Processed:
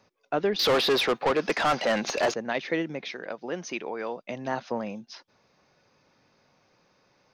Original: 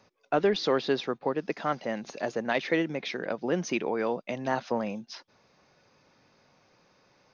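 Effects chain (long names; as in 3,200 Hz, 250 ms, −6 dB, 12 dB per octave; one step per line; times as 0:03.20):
0:00.59–0:02.34: mid-hump overdrive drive 26 dB, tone 5,300 Hz, clips at −13.5 dBFS
0:03.11–0:04.21: low-shelf EQ 300 Hz −10 dB
level −1.5 dB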